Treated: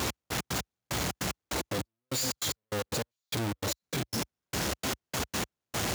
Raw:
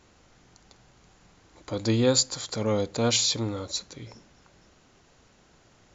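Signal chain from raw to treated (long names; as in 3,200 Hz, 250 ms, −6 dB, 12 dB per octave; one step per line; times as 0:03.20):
sign of each sample alone
gate pattern "x..x.x...xx." 149 BPM −60 dB
high-pass filter 58 Hz 24 dB per octave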